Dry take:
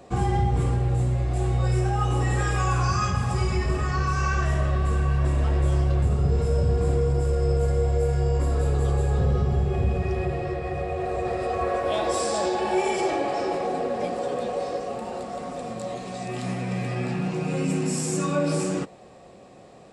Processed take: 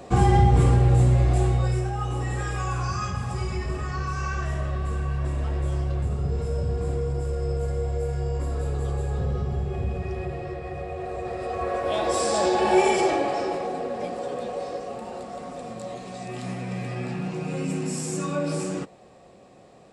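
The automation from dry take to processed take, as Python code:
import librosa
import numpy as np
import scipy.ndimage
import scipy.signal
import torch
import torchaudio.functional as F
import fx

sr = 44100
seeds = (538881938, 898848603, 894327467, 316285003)

y = fx.gain(x, sr, db=fx.line((1.29, 5.5), (1.91, -4.5), (11.3, -4.5), (12.79, 5.0), (13.74, -3.0)))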